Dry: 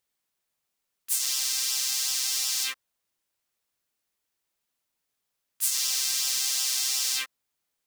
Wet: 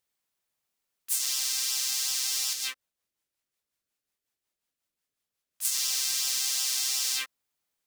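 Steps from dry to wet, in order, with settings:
0:02.53–0:05.65: rotating-speaker cabinet horn 5.5 Hz
level −1.5 dB

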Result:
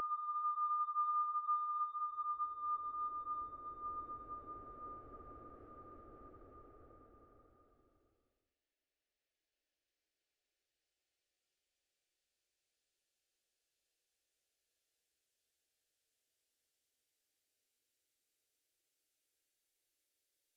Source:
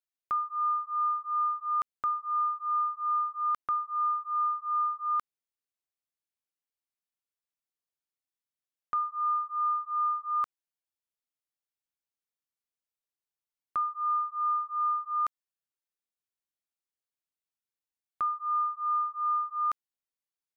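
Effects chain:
treble cut that deepens with the level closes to 320 Hz, closed at −25.5 dBFS
extreme stretch with random phases 29×, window 0.25 s, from 0:15.09
phaser with its sweep stopped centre 430 Hz, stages 4
level +10.5 dB

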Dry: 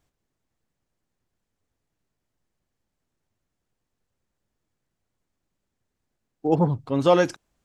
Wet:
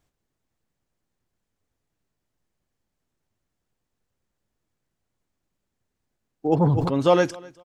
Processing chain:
on a send: repeating echo 253 ms, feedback 27%, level −23.5 dB
0:06.54–0:06.98: on the sum: level that may fall only so fast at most 29 dB per second

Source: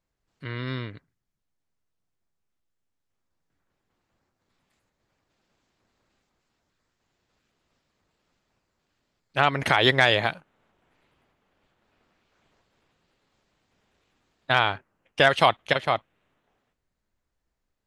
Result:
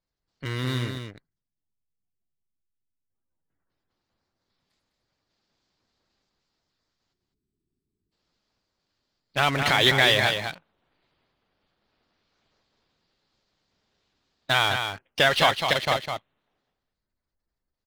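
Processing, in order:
dynamic equaliser 2,300 Hz, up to +4 dB, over −35 dBFS, Q 1.5
gate on every frequency bin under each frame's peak −30 dB strong
drawn EQ curve 2,600 Hz 0 dB, 4,700 Hz +10 dB, 7,200 Hz 0 dB
in parallel at −9.5 dB: fuzz pedal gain 33 dB, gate −42 dBFS
on the sum: gain on a spectral selection 0:07.13–0:08.12, 440–7,800 Hz −24 dB
on a send: single-tap delay 205 ms −6.5 dB
on the sum: level −5.5 dB

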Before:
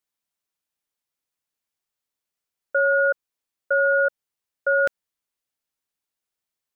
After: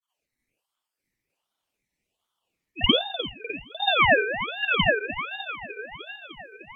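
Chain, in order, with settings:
time-frequency cells dropped at random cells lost 65%
treble cut that deepens with the level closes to 530 Hz, closed at −21 dBFS
flat-topped bell 1,000 Hz +11.5 dB 1.3 octaves
downward compressor, threshold −22 dBFS, peak gain reduction 8.5 dB
granular cloud, pitch spread up and down by 0 semitones
feedback echo with a high-pass in the loop 302 ms, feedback 76%, high-pass 200 Hz, level −11.5 dB
convolution reverb RT60 0.50 s, pre-delay 49 ms, DRR −8 dB
ring modulator whose carrier an LFO sweeps 1,600 Hz, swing 40%, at 1.3 Hz
level +3 dB

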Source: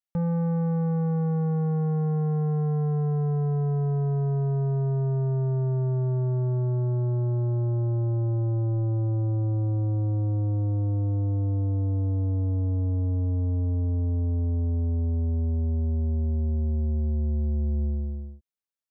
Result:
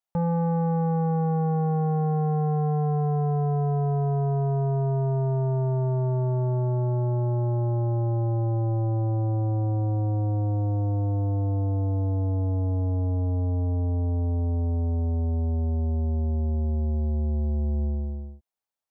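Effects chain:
parametric band 790 Hz +10.5 dB 0.97 octaves

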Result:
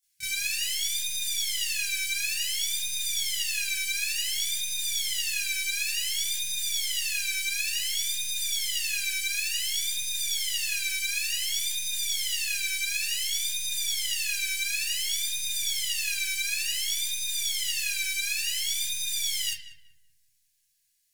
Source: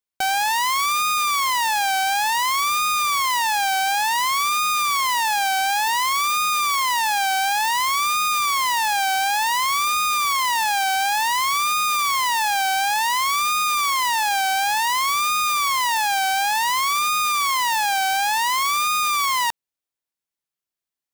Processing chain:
high-shelf EQ 3,400 Hz +5 dB
hard clipping −33 dBFS, distortion −4 dB
linear-phase brick-wall band-stop 170–1,500 Hz
parametric band 9,100 Hz +10.5 dB 1.8 octaves
feedback echo with a low-pass in the loop 190 ms, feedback 45%, low-pass 1,200 Hz, level −7.5 dB
convolution reverb RT60 0.40 s, pre-delay 23 ms, DRR −12 dB
level −3.5 dB

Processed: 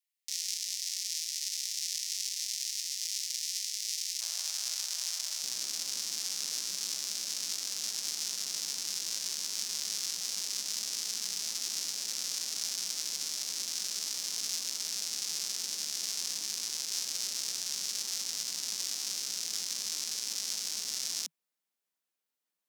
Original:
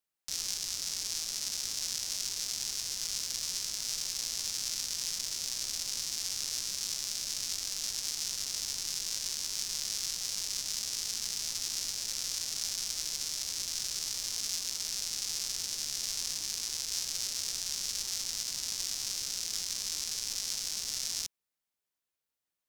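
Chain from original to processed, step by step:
Butterworth high-pass 1,800 Hz 96 dB per octave, from 0:04.20 570 Hz, from 0:05.42 160 Hz

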